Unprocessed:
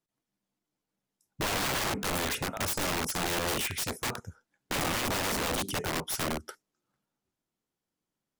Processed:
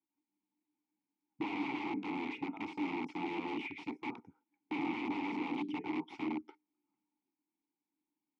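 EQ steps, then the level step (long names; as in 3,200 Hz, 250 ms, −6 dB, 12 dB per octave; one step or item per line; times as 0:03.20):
dynamic equaliser 1,000 Hz, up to −3 dB, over −42 dBFS, Q 0.96
formant filter u
band-pass filter 140–3,400 Hz
+7.5 dB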